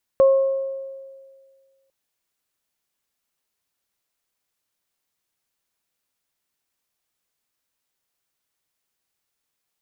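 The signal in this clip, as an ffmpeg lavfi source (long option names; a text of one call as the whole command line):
ffmpeg -f lavfi -i "aevalsrc='0.335*pow(10,-3*t/1.81)*sin(2*PI*540*t)+0.0501*pow(10,-3*t/1)*sin(2*PI*1080*t)':duration=1.7:sample_rate=44100" out.wav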